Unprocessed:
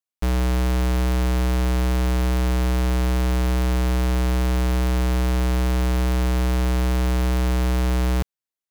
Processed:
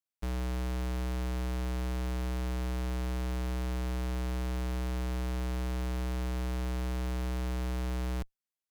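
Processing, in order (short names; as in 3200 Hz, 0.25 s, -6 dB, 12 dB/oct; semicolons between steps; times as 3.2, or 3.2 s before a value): one-sided clip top -36 dBFS, bottom -23 dBFS; gain -5 dB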